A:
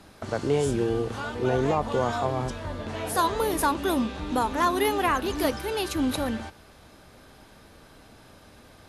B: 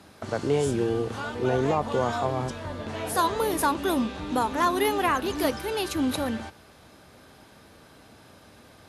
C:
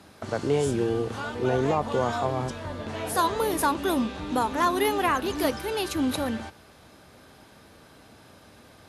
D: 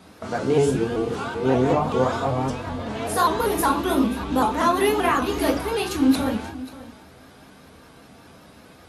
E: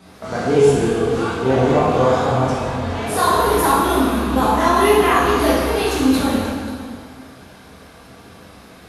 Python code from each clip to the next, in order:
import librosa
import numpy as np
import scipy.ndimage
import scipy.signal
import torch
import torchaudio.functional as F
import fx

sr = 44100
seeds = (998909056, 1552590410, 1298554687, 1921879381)

y1 = scipy.signal.sosfilt(scipy.signal.butter(2, 73.0, 'highpass', fs=sr, output='sos'), x)
y2 = y1
y3 = y2 + 10.0 ** (-17.0 / 20.0) * np.pad(y2, (int(533 * sr / 1000.0), 0))[:len(y2)]
y3 = fx.room_shoebox(y3, sr, seeds[0], volume_m3=200.0, walls='furnished', distance_m=1.7)
y3 = fx.vibrato_shape(y3, sr, shape='saw_up', rate_hz=5.2, depth_cents=100.0)
y4 = fx.rev_plate(y3, sr, seeds[1], rt60_s=1.6, hf_ratio=0.9, predelay_ms=0, drr_db=-5.0)